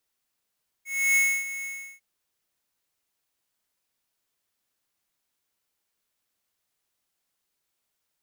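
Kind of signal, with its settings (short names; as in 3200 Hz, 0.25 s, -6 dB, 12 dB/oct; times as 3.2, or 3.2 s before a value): ADSR square 2190 Hz, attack 0.309 s, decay 0.28 s, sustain -14 dB, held 0.80 s, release 0.349 s -20 dBFS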